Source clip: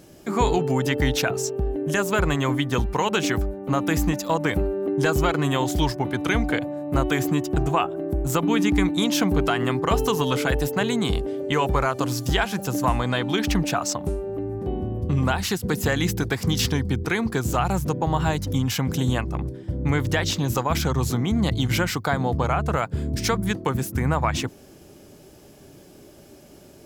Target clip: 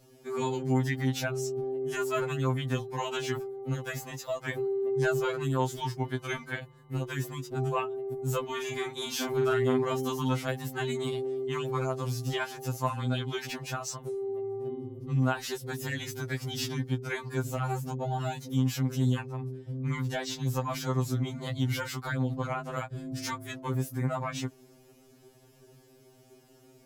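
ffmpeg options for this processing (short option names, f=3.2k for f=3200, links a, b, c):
-filter_complex "[0:a]asettb=1/sr,asplit=3[a][b][c];[a]atrim=end=8.464[d];[b]atrim=start=8.46:end=9.84,asetpts=PTS-STARTPTS,afade=t=in:d=0.004:c=qsin,afade=t=out:st=1.376:d=0.004:c=qsin,asplit=2[e][f];[f]adelay=43,volume=-3dB[g];[e][g]amix=inputs=2:normalize=0,atrim=end_sample=60858[h];[c]atrim=start=9.836[i];[d][h]acrossfade=d=0.004:c1=hsin:c2=qsin[j];[j][i]acrossfade=d=0.004:c1=qsin:c2=hsin,afftfilt=real='re*2.45*eq(mod(b,6),0)':imag='im*2.45*eq(mod(b,6),0)':win_size=2048:overlap=0.75,volume=-7.5dB"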